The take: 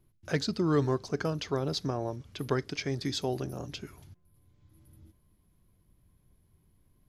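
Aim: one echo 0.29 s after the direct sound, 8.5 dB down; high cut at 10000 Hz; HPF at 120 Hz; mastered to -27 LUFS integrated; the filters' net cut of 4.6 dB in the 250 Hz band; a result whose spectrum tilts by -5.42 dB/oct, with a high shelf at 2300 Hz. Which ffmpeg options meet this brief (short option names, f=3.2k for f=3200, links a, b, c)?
-af "highpass=120,lowpass=10k,equalizer=f=250:t=o:g=-6,highshelf=f=2.3k:g=-7.5,aecho=1:1:290:0.376,volume=8dB"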